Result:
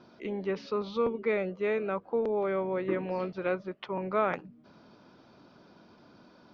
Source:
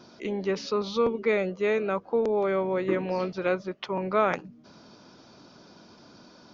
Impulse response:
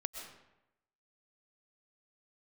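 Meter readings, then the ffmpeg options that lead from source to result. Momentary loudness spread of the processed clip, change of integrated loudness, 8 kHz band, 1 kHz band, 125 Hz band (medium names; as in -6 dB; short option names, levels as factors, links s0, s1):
6 LU, -4.0 dB, no reading, -4.0 dB, -4.0 dB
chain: -af "lowpass=3200,volume=0.631"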